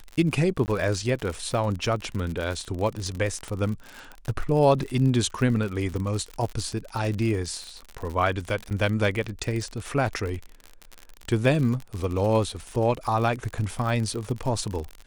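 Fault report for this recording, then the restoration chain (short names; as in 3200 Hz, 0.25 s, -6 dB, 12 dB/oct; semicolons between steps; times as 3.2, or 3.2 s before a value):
crackle 56/s -29 dBFS
0.66–0.68 gap 19 ms
3.48 pop -22 dBFS
8.7–8.71 gap 8.3 ms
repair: de-click; interpolate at 0.66, 19 ms; interpolate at 8.7, 8.3 ms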